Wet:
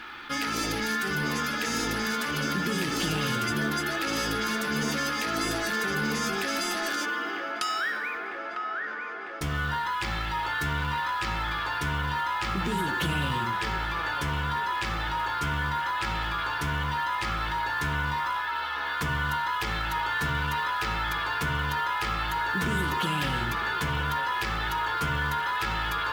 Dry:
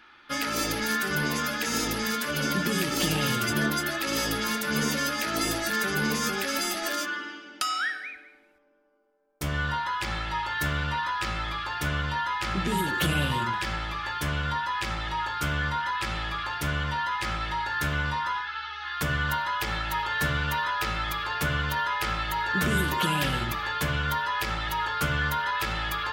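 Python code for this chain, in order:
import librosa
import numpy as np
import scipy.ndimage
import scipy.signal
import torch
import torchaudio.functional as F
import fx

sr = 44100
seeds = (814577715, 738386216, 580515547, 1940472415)

p1 = fx.high_shelf(x, sr, hz=11000.0, db=-11.0)
p2 = fx.notch(p1, sr, hz=590.0, q=12.0)
p3 = fx.quant_float(p2, sr, bits=2)
p4 = p2 + F.gain(torch.from_numpy(p3), -3.5).numpy()
p5 = fx.echo_wet_bandpass(p4, sr, ms=950, feedback_pct=57, hz=920.0, wet_db=-6)
p6 = fx.env_flatten(p5, sr, amount_pct=50)
y = F.gain(torch.from_numpy(p6), -8.0).numpy()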